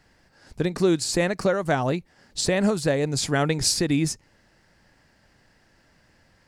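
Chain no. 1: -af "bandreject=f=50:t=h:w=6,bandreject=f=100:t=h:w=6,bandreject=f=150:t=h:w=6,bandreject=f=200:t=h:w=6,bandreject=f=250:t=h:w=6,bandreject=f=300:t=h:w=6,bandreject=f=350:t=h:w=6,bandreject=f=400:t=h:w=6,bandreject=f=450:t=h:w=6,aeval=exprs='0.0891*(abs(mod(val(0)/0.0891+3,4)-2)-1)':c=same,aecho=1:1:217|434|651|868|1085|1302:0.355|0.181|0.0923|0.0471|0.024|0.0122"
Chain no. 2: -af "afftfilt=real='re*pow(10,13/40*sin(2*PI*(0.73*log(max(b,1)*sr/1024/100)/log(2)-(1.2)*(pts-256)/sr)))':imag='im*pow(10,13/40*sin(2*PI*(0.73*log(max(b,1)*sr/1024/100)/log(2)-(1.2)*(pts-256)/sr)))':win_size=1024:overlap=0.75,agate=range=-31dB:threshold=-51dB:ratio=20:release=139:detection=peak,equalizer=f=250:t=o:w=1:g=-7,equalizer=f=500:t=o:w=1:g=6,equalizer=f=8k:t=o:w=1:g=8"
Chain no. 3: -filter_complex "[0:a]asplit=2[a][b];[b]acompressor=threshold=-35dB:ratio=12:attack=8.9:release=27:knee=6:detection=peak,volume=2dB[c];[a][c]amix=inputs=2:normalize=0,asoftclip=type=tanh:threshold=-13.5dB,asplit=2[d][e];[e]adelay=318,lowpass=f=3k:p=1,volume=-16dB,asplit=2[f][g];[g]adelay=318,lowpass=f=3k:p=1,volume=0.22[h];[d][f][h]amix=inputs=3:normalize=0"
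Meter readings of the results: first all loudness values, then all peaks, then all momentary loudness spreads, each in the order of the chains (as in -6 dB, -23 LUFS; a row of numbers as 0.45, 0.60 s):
-27.0, -19.0, -23.0 LUFS; -17.5, -1.5, -13.0 dBFS; 8, 13, 9 LU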